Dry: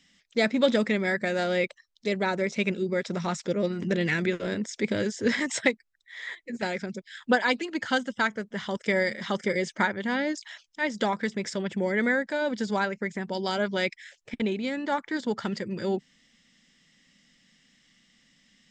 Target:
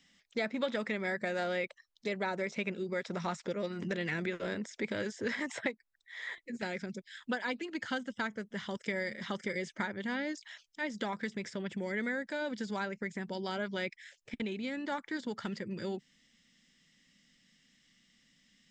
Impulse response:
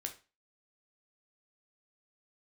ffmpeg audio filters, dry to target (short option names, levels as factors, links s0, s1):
-filter_complex "[0:a]asetnsamples=n=441:p=0,asendcmd='6.38 equalizer g -3.5',equalizer=f=790:w=0.74:g=3.5,acrossover=split=960|3000[s0][s1][s2];[s0]acompressor=threshold=0.0316:ratio=4[s3];[s1]acompressor=threshold=0.0251:ratio=4[s4];[s2]acompressor=threshold=0.00501:ratio=4[s5];[s3][s4][s5]amix=inputs=3:normalize=0,volume=0.596"